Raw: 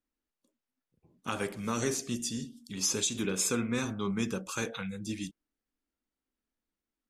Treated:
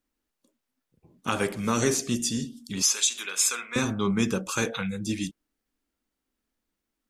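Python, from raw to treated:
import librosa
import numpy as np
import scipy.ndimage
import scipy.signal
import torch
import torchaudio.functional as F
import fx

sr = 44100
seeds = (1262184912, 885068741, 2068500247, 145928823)

y = fx.highpass(x, sr, hz=1200.0, slope=12, at=(2.82, 3.76))
y = F.gain(torch.from_numpy(y), 7.0).numpy()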